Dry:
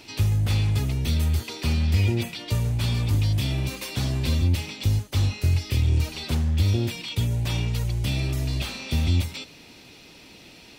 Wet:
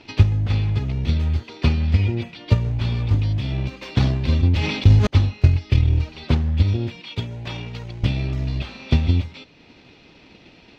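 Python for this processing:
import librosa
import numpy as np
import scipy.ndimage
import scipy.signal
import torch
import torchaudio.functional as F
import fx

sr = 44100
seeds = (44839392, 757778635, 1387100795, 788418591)

y = fx.highpass(x, sr, hz=280.0, slope=6, at=(6.99, 8.02), fade=0.02)
y = fx.transient(y, sr, attack_db=10, sustain_db=-3)
y = fx.air_absorb(y, sr, metres=210.0)
y = fx.sustainer(y, sr, db_per_s=44.0, at=(3.8, 5.07))
y = y * 10.0 ** (1.0 / 20.0)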